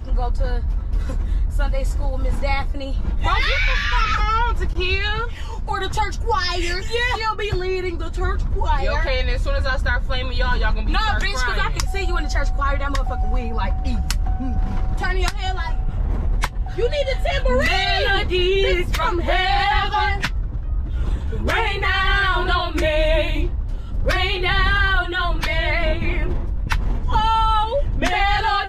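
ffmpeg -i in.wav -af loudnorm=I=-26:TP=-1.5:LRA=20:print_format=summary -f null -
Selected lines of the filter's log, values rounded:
Input Integrated:    -21.5 LUFS
Input True Peak:      -4.4 dBTP
Input LRA:             4.4 LU
Input Threshold:     -31.5 LUFS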